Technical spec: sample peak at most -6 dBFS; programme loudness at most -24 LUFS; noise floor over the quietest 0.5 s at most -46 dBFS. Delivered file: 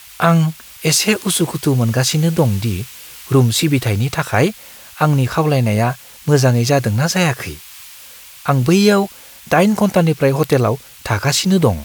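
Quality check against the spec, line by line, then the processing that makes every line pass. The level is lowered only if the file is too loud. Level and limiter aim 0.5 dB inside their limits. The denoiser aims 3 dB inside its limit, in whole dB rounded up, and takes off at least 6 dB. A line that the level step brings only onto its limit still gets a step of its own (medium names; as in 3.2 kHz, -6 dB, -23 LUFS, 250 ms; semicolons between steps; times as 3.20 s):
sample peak -1.5 dBFS: fail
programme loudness -16.0 LUFS: fail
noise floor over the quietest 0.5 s -39 dBFS: fail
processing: trim -8.5 dB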